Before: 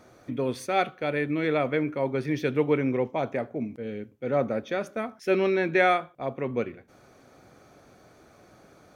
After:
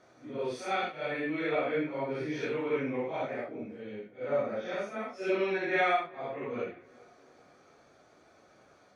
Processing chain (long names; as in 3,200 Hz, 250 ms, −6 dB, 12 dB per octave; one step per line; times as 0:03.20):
random phases in long frames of 200 ms
low-pass filter 6,900 Hz 12 dB per octave
low-shelf EQ 250 Hz −10.5 dB
on a send: tape delay 390 ms, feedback 54%, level −23 dB, low-pass 2,500 Hz
on the sum: level −3.5 dB